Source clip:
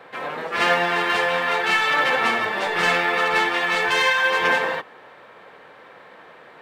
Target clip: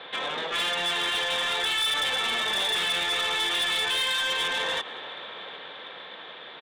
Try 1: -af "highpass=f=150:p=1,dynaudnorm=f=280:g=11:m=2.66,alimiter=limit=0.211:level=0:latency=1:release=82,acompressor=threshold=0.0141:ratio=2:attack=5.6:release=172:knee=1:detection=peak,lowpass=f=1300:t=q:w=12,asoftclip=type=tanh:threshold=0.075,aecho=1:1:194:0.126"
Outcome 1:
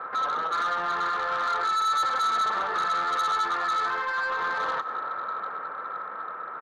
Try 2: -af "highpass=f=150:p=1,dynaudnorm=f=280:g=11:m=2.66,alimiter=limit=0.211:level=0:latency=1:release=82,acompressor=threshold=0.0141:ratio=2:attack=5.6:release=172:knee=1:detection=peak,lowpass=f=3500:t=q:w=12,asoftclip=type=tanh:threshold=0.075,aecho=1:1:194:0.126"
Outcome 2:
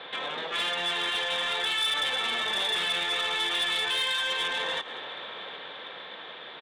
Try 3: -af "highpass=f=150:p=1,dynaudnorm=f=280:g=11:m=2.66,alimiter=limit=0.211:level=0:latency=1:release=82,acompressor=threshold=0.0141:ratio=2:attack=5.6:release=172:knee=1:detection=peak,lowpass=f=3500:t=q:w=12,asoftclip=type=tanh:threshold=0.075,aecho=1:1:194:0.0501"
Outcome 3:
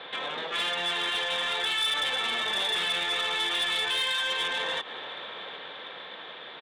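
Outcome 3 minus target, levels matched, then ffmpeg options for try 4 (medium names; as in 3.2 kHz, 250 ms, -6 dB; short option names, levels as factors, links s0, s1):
compression: peak gain reduction +3.5 dB
-af "highpass=f=150:p=1,dynaudnorm=f=280:g=11:m=2.66,alimiter=limit=0.211:level=0:latency=1:release=82,acompressor=threshold=0.0316:ratio=2:attack=5.6:release=172:knee=1:detection=peak,lowpass=f=3500:t=q:w=12,asoftclip=type=tanh:threshold=0.075,aecho=1:1:194:0.0501"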